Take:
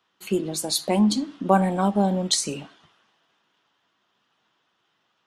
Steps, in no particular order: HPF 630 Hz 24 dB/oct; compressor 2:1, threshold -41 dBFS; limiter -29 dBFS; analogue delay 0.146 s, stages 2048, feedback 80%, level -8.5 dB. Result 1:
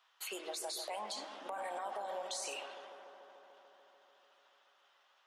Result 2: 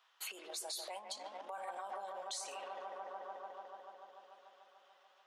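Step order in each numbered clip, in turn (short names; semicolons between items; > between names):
HPF > limiter > compressor > analogue delay; analogue delay > limiter > HPF > compressor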